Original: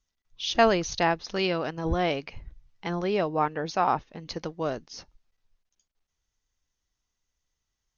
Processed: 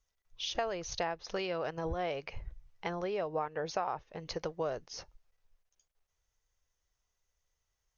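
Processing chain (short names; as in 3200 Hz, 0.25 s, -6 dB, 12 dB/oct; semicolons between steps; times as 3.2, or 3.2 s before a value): compressor 12:1, threshold -31 dBFS, peak gain reduction 17 dB; ten-band EQ 250 Hz -11 dB, 500 Hz +5 dB, 4000 Hz -4 dB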